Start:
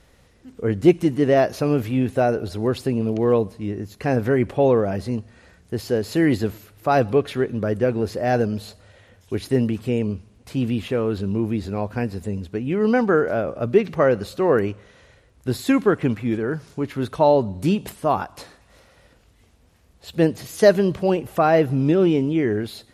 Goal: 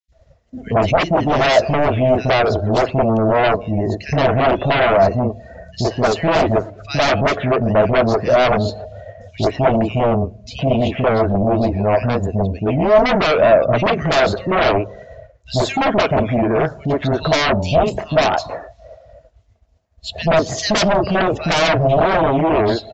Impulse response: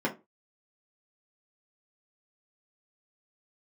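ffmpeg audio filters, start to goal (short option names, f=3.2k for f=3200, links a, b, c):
-filter_complex "[0:a]acrossover=split=280|2500[a][b][c];[a]adelay=80[d];[b]adelay=120[e];[d][e][c]amix=inputs=3:normalize=0,agate=range=-33dB:threshold=-49dB:ratio=3:detection=peak,aresample=16000,aeval=exprs='0.794*sin(PI/2*10*val(0)/0.794)':c=same,aresample=44100,equalizer=f=650:w=5.1:g=14.5,afftdn=nr=16:nf=-24,asplit=2[f][g];[g]acompressor=threshold=-20dB:ratio=6,volume=-2.5dB[h];[f][h]amix=inputs=2:normalize=0,volume=-13dB"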